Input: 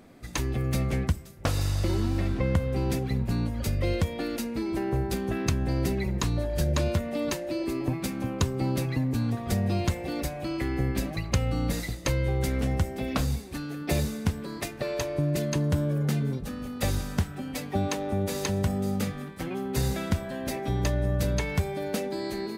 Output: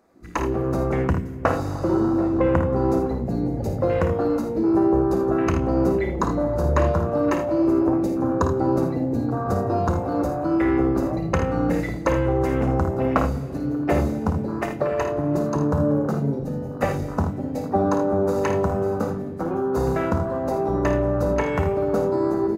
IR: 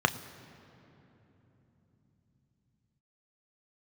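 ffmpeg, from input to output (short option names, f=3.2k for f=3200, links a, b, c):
-filter_complex "[0:a]afwtdn=0.0141,bass=f=250:g=-4,treble=f=4k:g=3,bandreject=f=50:t=h:w=6,bandreject=f=100:t=h:w=6,bandreject=f=150:t=h:w=6,bandreject=f=200:t=h:w=6,bandreject=f=250:t=h:w=6,bandreject=f=300:t=h:w=6,bandreject=f=350:t=h:w=6,aecho=1:1:54|79:0.398|0.316,asplit=2[a][b];[1:a]atrim=start_sample=2205,asetrate=48510,aresample=44100[c];[b][c]afir=irnorm=-1:irlink=0,volume=-10.5dB[d];[a][d]amix=inputs=2:normalize=0,volume=5dB"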